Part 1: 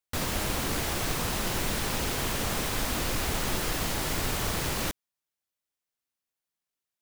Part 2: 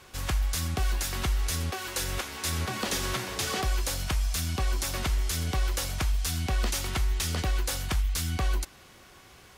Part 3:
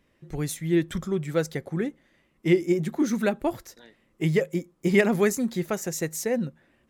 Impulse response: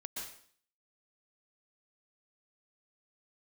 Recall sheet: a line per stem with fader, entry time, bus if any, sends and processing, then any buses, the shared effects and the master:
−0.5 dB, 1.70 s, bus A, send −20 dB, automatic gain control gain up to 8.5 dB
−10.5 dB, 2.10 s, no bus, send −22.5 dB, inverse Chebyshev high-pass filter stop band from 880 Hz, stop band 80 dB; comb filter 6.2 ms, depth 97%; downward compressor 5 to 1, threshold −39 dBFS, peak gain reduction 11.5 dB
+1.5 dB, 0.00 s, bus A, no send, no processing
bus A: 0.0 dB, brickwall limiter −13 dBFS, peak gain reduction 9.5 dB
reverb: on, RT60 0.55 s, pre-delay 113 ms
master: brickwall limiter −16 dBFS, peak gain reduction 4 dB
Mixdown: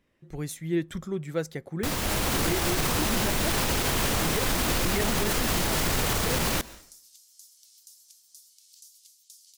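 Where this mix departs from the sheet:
stem 2: missing comb filter 6.2 ms, depth 97%
stem 3 +1.5 dB → −4.5 dB

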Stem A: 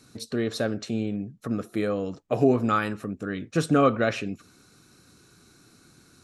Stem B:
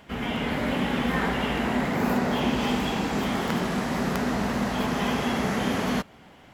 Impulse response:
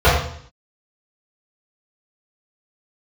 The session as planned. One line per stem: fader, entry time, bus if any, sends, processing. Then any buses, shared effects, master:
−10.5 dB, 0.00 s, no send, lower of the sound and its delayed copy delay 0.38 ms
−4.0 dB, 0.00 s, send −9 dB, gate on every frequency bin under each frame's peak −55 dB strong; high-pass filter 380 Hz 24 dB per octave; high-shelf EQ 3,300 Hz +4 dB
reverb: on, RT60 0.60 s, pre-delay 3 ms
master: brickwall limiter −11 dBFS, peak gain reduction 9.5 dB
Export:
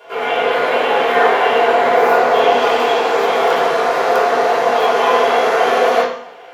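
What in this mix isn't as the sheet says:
stem A −10.5 dB → −19.0 dB
master: missing brickwall limiter −11 dBFS, peak gain reduction 9.5 dB

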